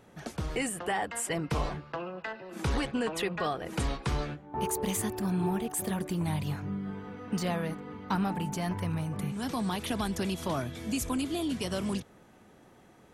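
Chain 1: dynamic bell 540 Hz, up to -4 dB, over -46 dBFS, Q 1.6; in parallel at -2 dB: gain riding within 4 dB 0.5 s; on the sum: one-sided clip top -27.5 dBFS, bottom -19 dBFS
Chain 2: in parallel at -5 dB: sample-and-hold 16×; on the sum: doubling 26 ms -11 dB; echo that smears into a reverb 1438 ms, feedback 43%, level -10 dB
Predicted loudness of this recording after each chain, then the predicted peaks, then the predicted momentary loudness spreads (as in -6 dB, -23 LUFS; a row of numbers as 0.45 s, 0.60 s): -30.0 LUFS, -29.0 LUFS; -18.0 dBFS, -14.5 dBFS; 5 LU, 7 LU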